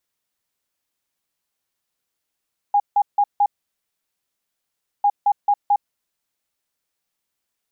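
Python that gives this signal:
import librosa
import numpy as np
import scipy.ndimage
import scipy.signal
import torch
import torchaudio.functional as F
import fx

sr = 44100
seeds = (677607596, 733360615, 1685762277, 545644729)

y = fx.beep_pattern(sr, wave='sine', hz=817.0, on_s=0.06, off_s=0.16, beeps=4, pause_s=1.58, groups=2, level_db=-12.5)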